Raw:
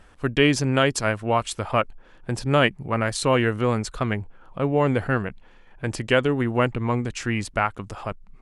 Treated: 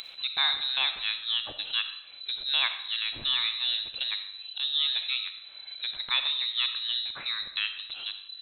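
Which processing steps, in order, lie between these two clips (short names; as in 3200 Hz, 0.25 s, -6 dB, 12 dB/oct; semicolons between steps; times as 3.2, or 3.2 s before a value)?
inverted band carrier 4000 Hz; upward compressor, threshold -22 dBFS; on a send: reverb RT60 0.75 s, pre-delay 15 ms, DRR 8 dB; on the sum: gain -8.5 dB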